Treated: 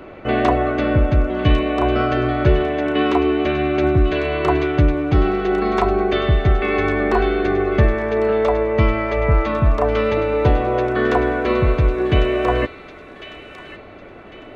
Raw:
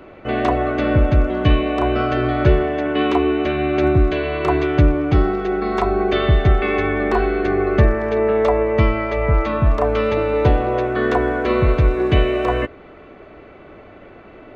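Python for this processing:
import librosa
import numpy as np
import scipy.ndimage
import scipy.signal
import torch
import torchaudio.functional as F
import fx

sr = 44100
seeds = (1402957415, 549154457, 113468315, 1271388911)

y = fx.rider(x, sr, range_db=4, speed_s=0.5)
y = fx.echo_wet_highpass(y, sr, ms=1101, feedback_pct=35, hz=2100.0, wet_db=-8)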